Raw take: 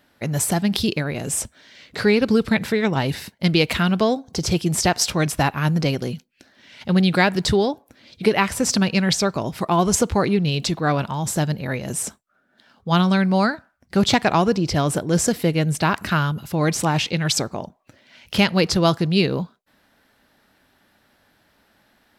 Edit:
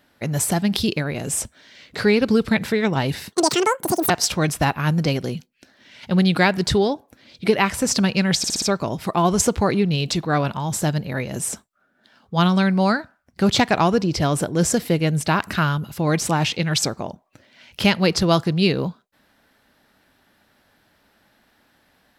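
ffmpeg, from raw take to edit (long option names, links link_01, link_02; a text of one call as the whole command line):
ffmpeg -i in.wav -filter_complex "[0:a]asplit=7[link_01][link_02][link_03][link_04][link_05][link_06][link_07];[link_01]atrim=end=3.324[link_08];[link_02]atrim=start=3.32:end=4.88,asetpts=PTS-STARTPTS,asetrate=88200,aresample=44100[link_09];[link_03]atrim=start=4.876:end=9.222[link_10];[link_04]atrim=start=9.158:end=9.222[link_11];[link_05]atrim=start=9.158:end=9.222[link_12];[link_06]atrim=start=9.158:end=9.222[link_13];[link_07]atrim=start=9.158[link_14];[link_08][link_09]acrossfade=duration=0.004:curve1=hsin:curve2=hsin[link_15];[link_15][link_10]acrossfade=duration=0.004:curve1=hsin:curve2=hsin[link_16];[link_16][link_11]acrossfade=duration=0.004:curve1=hsin:curve2=hsin[link_17];[link_17][link_12]acrossfade=duration=0.004:curve1=hsin:curve2=hsin[link_18];[link_18][link_13]acrossfade=duration=0.004:curve1=hsin:curve2=hsin[link_19];[link_19][link_14]acrossfade=duration=0.004:curve1=hsin:curve2=hsin" out.wav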